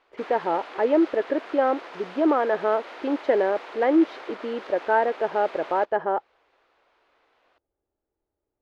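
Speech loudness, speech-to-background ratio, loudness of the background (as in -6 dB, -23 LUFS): -24.5 LUFS, 16.0 dB, -40.5 LUFS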